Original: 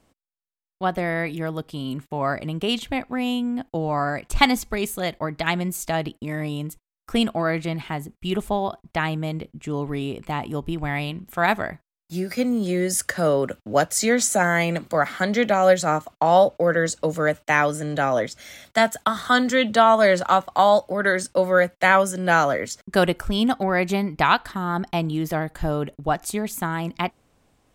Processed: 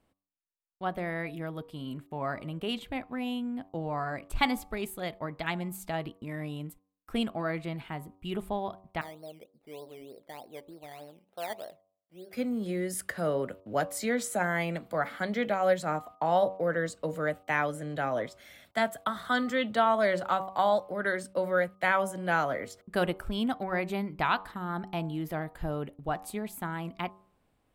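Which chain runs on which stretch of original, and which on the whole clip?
0:09.01–0:12.33: resonant band-pass 560 Hz, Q 2.8 + sample-and-hold swept by an LFO 13×, swing 60% 3.3 Hz
whole clip: parametric band 6,300 Hz −9.5 dB 0.81 octaves; hum removal 95.2 Hz, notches 13; level −9 dB

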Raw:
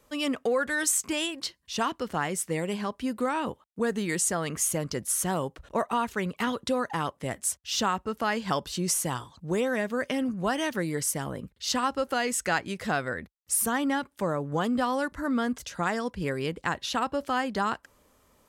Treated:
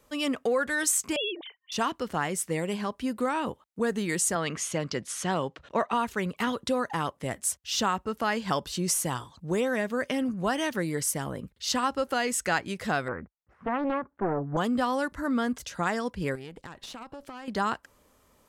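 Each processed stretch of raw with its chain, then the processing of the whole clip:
0:01.16–0:01.72: three sine waves on the formant tracks + notch comb filter 1,300 Hz
0:04.35–0:05.94: band-pass filter 110–3,800 Hz + high-shelf EQ 2,200 Hz +8.5 dB
0:13.08–0:14.57: low-pass filter 1,500 Hz 24 dB per octave + highs frequency-modulated by the lows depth 0.65 ms
0:16.35–0:17.48: downward compressor 10 to 1, threshold −34 dBFS + tube saturation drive 32 dB, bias 0.7
whole clip: no processing

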